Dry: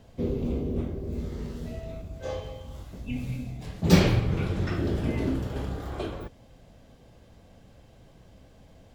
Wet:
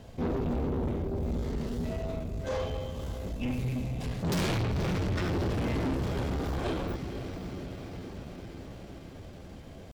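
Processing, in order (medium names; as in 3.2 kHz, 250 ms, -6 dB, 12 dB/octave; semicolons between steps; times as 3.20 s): echo that smears into a reverb 461 ms, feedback 71%, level -14.5 dB; tempo 0.9×; valve stage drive 33 dB, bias 0.35; trim +6 dB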